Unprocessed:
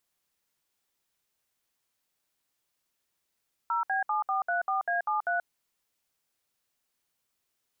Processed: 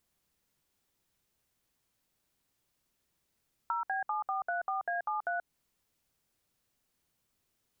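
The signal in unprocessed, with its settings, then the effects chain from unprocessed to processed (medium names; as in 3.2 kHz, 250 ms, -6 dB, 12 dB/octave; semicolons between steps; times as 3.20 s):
DTMF "0B7434A73", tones 132 ms, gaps 64 ms, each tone -28 dBFS
bass shelf 340 Hz +11.5 dB; compression, threshold -31 dBFS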